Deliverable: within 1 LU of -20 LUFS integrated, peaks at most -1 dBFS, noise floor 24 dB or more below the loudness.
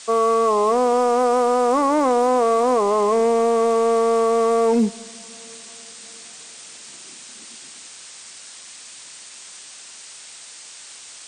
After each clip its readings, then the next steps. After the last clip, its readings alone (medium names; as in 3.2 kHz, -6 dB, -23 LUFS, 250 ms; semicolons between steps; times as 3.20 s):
clipped samples 1.2%; clipping level -11.0 dBFS; noise floor -41 dBFS; noise floor target -42 dBFS; loudness -18.0 LUFS; peak level -11.0 dBFS; loudness target -20.0 LUFS
-> clip repair -11 dBFS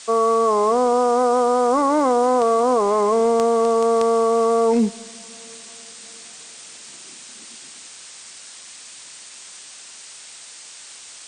clipped samples 0.0%; noise floor -41 dBFS; noise floor target -42 dBFS
-> noise reduction 6 dB, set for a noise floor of -41 dBFS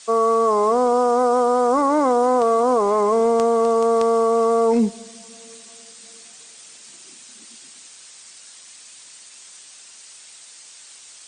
noise floor -45 dBFS; loudness -18.0 LUFS; peak level -2.5 dBFS; loudness target -20.0 LUFS
-> trim -2 dB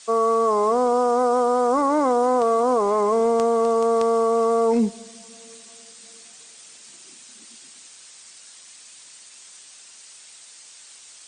loudness -20.0 LUFS; peak level -4.5 dBFS; noise floor -47 dBFS